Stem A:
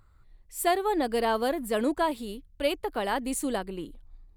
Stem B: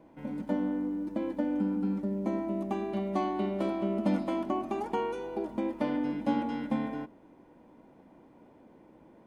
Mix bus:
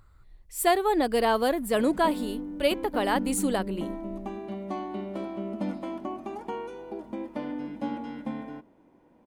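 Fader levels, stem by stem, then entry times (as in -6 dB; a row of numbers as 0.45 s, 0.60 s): +2.5 dB, -3.5 dB; 0.00 s, 1.55 s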